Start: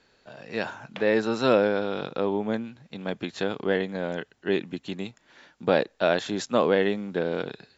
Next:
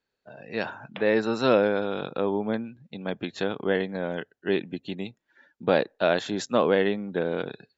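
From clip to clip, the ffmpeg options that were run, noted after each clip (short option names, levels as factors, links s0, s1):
-af "afftdn=nr=20:nf=-48"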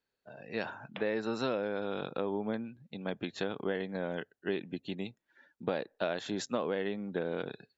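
-af "acompressor=threshold=0.0631:ratio=6,volume=0.596"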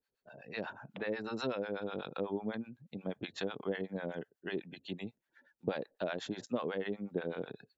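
-filter_complex "[0:a]acrossover=split=680[s0][s1];[s0]aeval=exprs='val(0)*(1-1/2+1/2*cos(2*PI*8.1*n/s))':c=same[s2];[s1]aeval=exprs='val(0)*(1-1/2-1/2*cos(2*PI*8.1*n/s))':c=same[s3];[s2][s3]amix=inputs=2:normalize=0,volume=1.19"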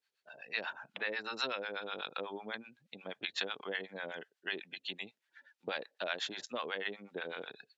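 -af "bandpass=f=3100:t=q:w=0.73:csg=0,volume=2.66"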